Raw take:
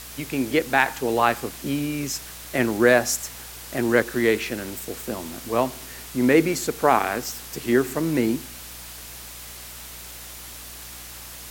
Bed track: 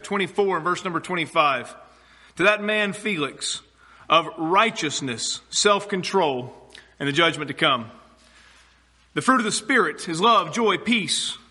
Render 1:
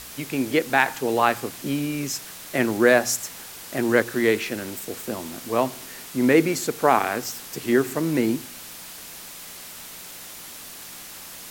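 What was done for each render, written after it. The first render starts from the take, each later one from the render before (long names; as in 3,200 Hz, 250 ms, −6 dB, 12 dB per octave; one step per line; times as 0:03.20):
hum removal 60 Hz, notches 2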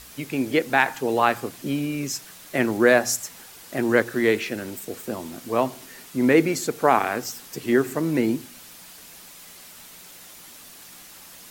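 broadband denoise 6 dB, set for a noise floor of −40 dBFS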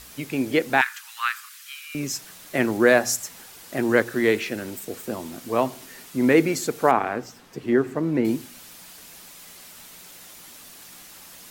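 0:00.81–0:01.95: Butterworth high-pass 1,200 Hz 48 dB per octave
0:06.91–0:08.25: low-pass filter 1,500 Hz 6 dB per octave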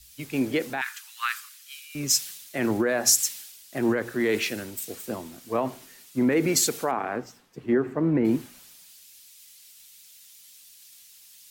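brickwall limiter −16.5 dBFS, peak gain reduction 11.5 dB
multiband upward and downward expander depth 100%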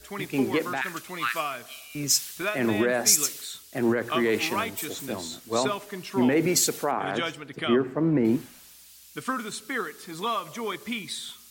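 mix in bed track −11.5 dB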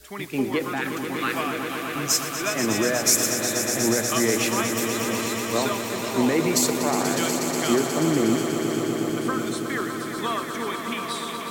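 feedback delay that plays each chunk backwards 535 ms, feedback 68%, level −13.5 dB
echo that builds up and dies away 121 ms, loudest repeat 5, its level −10 dB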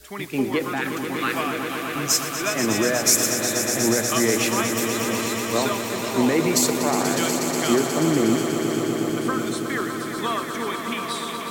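level +1.5 dB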